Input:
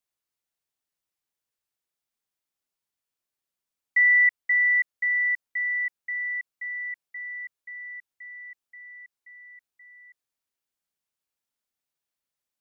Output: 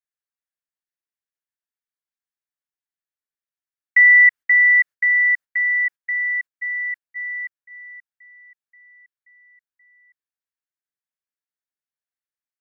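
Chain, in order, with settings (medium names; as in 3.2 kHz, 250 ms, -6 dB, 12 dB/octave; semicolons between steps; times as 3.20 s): gate -38 dBFS, range -13 dB; peaking EQ 1.7 kHz +10.5 dB 0.74 oct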